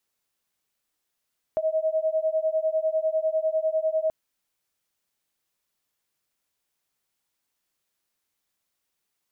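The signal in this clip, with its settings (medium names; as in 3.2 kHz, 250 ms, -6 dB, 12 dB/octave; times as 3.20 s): beating tones 629 Hz, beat 10 Hz, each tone -25 dBFS 2.53 s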